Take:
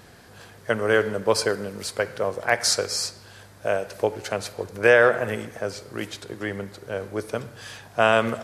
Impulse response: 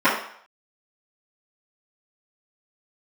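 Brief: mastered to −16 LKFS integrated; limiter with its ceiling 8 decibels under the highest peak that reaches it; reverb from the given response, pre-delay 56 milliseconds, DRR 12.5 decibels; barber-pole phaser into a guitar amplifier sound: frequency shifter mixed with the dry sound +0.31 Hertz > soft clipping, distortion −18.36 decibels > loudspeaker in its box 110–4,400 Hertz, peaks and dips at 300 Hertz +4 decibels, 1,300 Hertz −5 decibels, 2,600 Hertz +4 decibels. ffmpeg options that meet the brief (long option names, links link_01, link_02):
-filter_complex "[0:a]alimiter=limit=-12.5dB:level=0:latency=1,asplit=2[link_01][link_02];[1:a]atrim=start_sample=2205,adelay=56[link_03];[link_02][link_03]afir=irnorm=-1:irlink=0,volume=-34.5dB[link_04];[link_01][link_04]amix=inputs=2:normalize=0,asplit=2[link_05][link_06];[link_06]afreqshift=0.31[link_07];[link_05][link_07]amix=inputs=2:normalize=1,asoftclip=threshold=-18.5dB,highpass=110,equalizer=frequency=300:width_type=q:width=4:gain=4,equalizer=frequency=1300:width_type=q:width=4:gain=-5,equalizer=frequency=2600:width_type=q:width=4:gain=4,lowpass=frequency=4400:width=0.5412,lowpass=frequency=4400:width=1.3066,volume=17dB"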